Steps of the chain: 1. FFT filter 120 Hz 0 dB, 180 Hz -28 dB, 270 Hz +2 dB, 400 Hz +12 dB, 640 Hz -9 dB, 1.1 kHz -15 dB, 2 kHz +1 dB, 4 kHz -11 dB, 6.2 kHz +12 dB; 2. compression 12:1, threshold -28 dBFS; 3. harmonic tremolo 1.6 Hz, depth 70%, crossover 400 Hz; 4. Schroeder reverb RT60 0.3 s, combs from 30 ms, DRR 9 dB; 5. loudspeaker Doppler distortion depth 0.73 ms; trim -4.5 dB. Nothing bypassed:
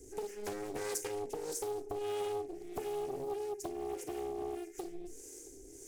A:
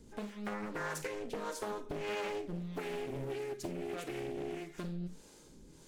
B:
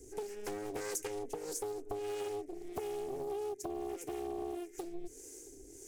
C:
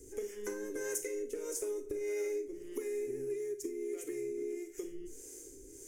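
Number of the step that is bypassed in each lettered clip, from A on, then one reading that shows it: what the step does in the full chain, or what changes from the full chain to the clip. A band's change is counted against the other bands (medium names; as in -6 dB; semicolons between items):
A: 1, momentary loudness spread change -4 LU; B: 4, momentary loudness spread change -2 LU; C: 5, 4 kHz band -8.5 dB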